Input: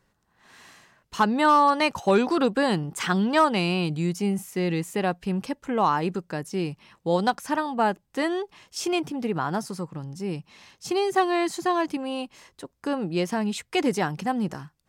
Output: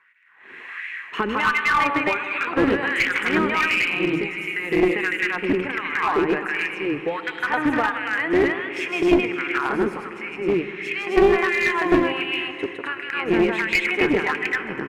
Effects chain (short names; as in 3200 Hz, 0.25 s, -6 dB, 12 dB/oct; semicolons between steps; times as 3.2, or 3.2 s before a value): EQ curve 410 Hz 0 dB, 620 Hz -12 dB, 2300 Hz +12 dB, 4600 Hz -18 dB; compressor 8:1, threshold -28 dBFS, peak gain reduction 14 dB; loudspeakers at several distances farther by 54 m -2 dB, 90 m 0 dB; LFO high-pass sine 1.4 Hz 350–2200 Hz; AM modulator 170 Hz, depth 20%; low shelf 350 Hz +9.5 dB; notch 5900 Hz, Q 20; reverb RT60 3.3 s, pre-delay 59 ms, DRR 11 dB; one-sided clip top -22.5 dBFS; gain +6 dB